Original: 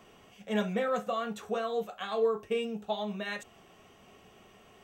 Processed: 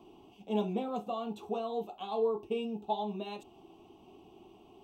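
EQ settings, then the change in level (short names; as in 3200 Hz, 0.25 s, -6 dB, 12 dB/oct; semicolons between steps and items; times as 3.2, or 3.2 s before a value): EQ curve 210 Hz 0 dB, 340 Hz +14 dB, 520 Hz -8 dB, 870 Hz +7 dB, 1800 Hz -28 dB, 2600 Hz -3 dB, 4100 Hz -4 dB, 6900 Hz -12 dB, 11000 Hz -7 dB; -2.0 dB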